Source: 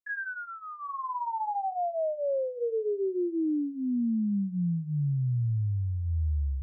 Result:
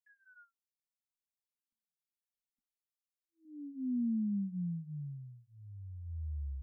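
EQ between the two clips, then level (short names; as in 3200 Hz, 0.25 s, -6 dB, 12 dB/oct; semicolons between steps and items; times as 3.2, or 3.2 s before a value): brick-wall FIR band-stop 280–1400 Hz; fixed phaser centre 430 Hz, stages 6; -5.0 dB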